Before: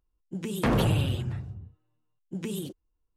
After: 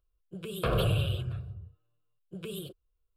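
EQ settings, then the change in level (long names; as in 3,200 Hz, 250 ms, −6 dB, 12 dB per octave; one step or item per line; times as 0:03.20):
phaser with its sweep stopped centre 1,300 Hz, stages 8
0.0 dB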